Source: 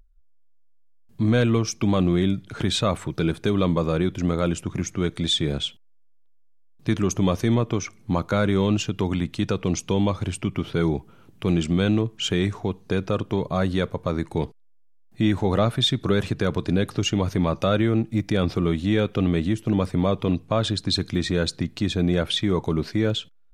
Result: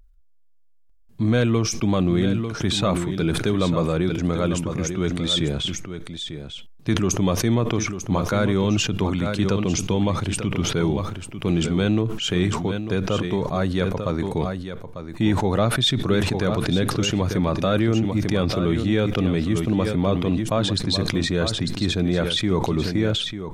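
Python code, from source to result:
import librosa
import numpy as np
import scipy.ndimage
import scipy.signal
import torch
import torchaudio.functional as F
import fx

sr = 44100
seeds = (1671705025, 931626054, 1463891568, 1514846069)

p1 = x + fx.echo_single(x, sr, ms=896, db=-10.0, dry=0)
y = fx.sustainer(p1, sr, db_per_s=47.0)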